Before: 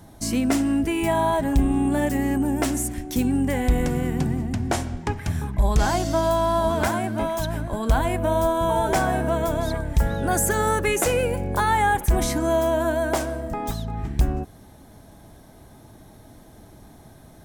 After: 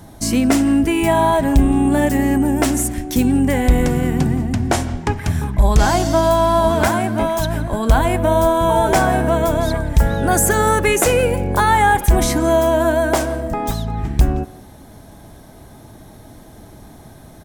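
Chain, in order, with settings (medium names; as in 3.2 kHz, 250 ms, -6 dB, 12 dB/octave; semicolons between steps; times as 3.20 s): speakerphone echo 170 ms, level -17 dB; trim +6.5 dB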